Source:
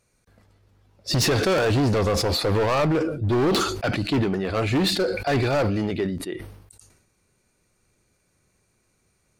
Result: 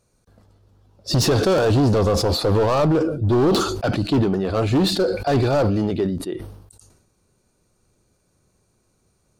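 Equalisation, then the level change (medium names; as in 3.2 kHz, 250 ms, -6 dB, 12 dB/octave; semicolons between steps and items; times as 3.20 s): peaking EQ 2.1 kHz -10.5 dB 0.87 oct; treble shelf 5.4 kHz -4.5 dB; +4.0 dB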